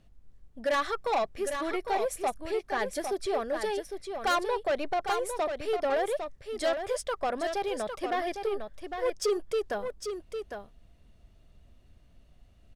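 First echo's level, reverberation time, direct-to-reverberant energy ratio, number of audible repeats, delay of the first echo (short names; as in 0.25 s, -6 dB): -7.0 dB, none, none, 1, 0.805 s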